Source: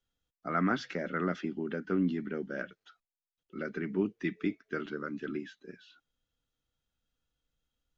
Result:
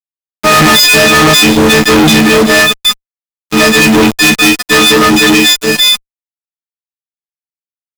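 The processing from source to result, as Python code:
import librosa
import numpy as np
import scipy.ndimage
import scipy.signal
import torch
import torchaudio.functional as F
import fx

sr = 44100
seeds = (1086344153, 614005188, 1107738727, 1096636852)

y = fx.freq_snap(x, sr, grid_st=6)
y = fx.high_shelf_res(y, sr, hz=2100.0, db=9.0, q=1.5)
y = fx.fuzz(y, sr, gain_db=51.0, gate_db=-49.0)
y = y * 10.0 ** (8.5 / 20.0)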